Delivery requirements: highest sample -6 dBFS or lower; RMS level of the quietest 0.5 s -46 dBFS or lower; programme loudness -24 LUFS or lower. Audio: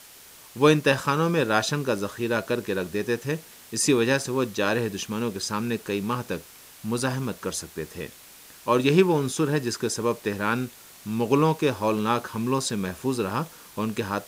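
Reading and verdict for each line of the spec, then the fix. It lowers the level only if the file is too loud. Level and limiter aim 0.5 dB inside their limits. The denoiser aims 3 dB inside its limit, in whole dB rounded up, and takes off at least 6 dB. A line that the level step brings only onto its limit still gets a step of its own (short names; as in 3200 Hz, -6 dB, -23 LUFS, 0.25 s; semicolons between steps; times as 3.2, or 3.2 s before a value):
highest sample -5.0 dBFS: fail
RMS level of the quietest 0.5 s -48 dBFS: OK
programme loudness -25.5 LUFS: OK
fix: limiter -6.5 dBFS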